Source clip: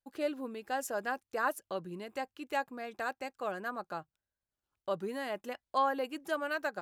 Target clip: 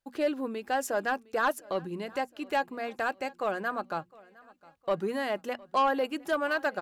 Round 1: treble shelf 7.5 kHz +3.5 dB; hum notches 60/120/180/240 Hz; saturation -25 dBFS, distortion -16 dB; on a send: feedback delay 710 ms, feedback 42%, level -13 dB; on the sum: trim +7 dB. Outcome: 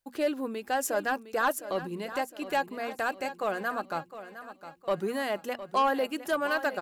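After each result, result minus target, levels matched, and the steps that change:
echo-to-direct +10.5 dB; 8 kHz band +4.5 dB
change: feedback delay 710 ms, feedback 42%, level -23.5 dB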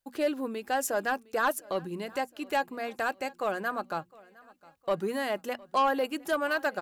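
8 kHz band +4.5 dB
change: treble shelf 7.5 kHz -6 dB

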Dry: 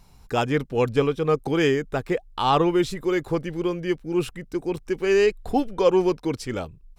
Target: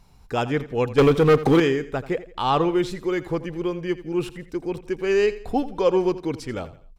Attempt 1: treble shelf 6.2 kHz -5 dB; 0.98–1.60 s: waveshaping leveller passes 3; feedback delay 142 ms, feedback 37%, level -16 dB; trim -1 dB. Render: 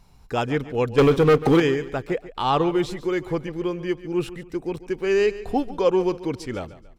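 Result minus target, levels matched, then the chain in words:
echo 58 ms late
treble shelf 6.2 kHz -5 dB; 0.98–1.60 s: waveshaping leveller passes 3; feedback delay 84 ms, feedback 37%, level -16 dB; trim -1 dB

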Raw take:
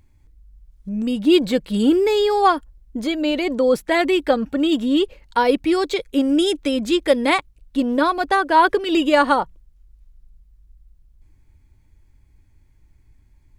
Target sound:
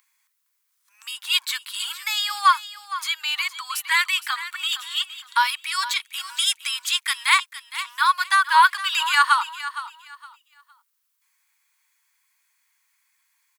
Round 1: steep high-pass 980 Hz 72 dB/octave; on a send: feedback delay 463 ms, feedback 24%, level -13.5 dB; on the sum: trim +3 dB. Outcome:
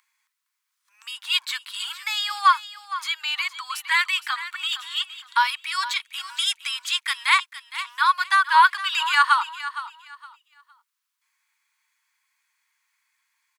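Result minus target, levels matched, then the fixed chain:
8 kHz band -5.0 dB
steep high-pass 980 Hz 72 dB/octave; treble shelf 8 kHz +11.5 dB; on a send: feedback delay 463 ms, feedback 24%, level -13.5 dB; on the sum: trim +3 dB

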